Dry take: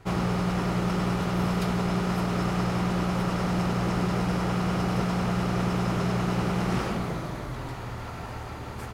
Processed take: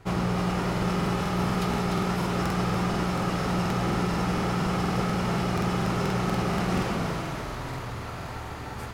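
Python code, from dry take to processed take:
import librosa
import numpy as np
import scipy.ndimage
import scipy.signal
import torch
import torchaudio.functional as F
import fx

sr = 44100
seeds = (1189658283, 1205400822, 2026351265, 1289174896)

y = fx.echo_thinned(x, sr, ms=298, feedback_pct=63, hz=620.0, wet_db=-4.5)
y = fx.buffer_crackle(y, sr, first_s=0.73, period_s=0.24, block=2048, kind='repeat')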